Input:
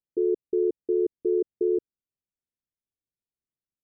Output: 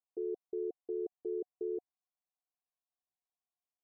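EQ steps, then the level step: vocal tract filter a; +10.5 dB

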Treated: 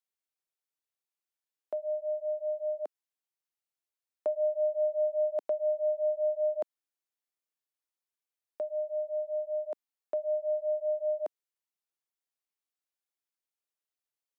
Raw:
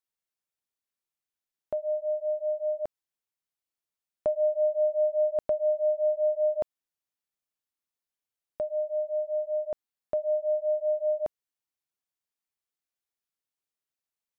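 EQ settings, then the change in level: HPF 290 Hz 24 dB/oct; -3.5 dB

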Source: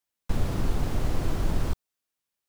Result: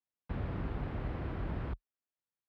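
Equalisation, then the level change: HPF 41 Hz 24 dB/oct; dynamic EQ 1900 Hz, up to +5 dB, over -53 dBFS, Q 0.89; air absorption 430 m; -7.5 dB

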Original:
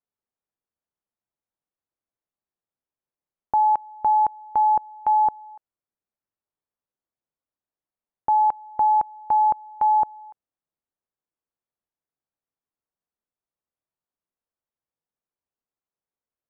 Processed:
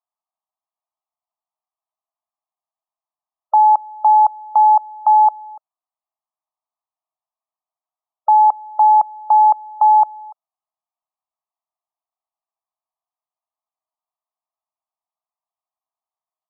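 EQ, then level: brick-wall FIR high-pass 610 Hz; brick-wall FIR low-pass 1300 Hz; +7.5 dB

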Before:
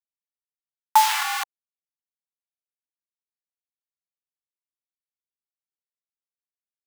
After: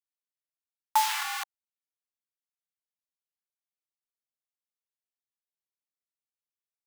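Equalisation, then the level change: HPF 690 Hz 6 dB/oct; -6.0 dB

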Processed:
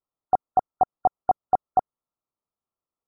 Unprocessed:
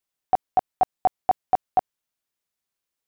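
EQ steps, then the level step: brick-wall FIR low-pass 1400 Hz; 0.0 dB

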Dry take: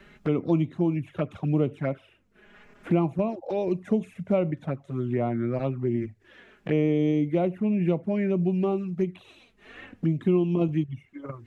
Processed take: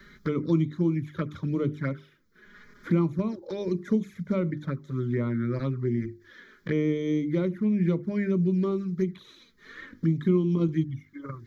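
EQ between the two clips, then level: high shelf 3500 Hz +8.5 dB; notches 50/100/150/200/250/300/350/400 Hz; fixed phaser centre 2700 Hz, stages 6; +2.0 dB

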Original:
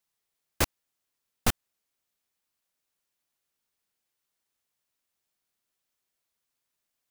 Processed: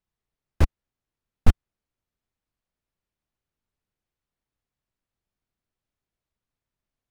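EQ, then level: RIAA curve playback; -2.5 dB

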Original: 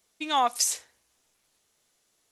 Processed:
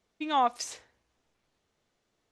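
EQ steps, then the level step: tape spacing loss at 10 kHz 20 dB; low shelf 280 Hz +5 dB; 0.0 dB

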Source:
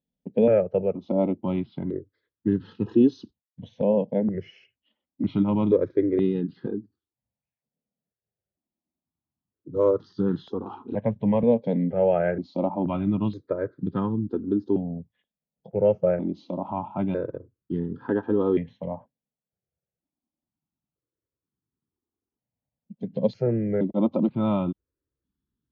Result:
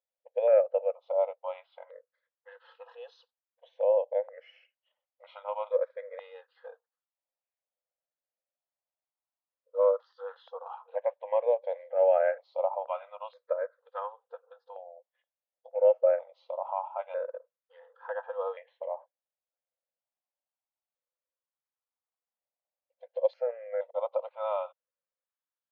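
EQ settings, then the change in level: brick-wall FIR high-pass 480 Hz; air absorption 150 m; high shelf 3300 Hz -10.5 dB; 0.0 dB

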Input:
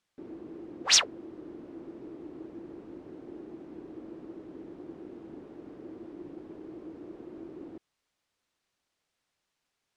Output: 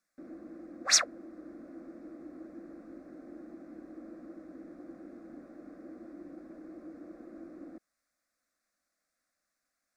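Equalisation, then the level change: low shelf 280 Hz -4.5 dB; fixed phaser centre 610 Hz, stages 8; +2.0 dB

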